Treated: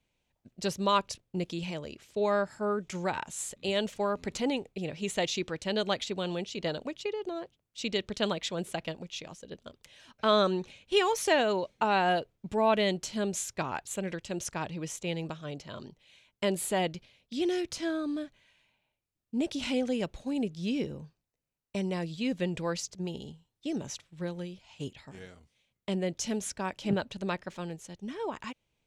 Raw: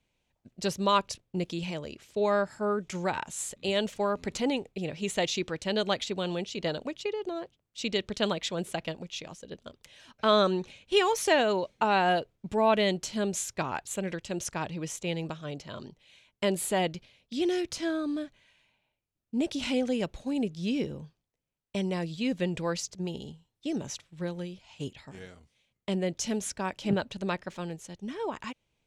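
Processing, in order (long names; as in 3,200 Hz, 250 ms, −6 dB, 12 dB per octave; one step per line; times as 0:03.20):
0:20.87–0:21.84: notch filter 3,300 Hz, Q 8
level −1.5 dB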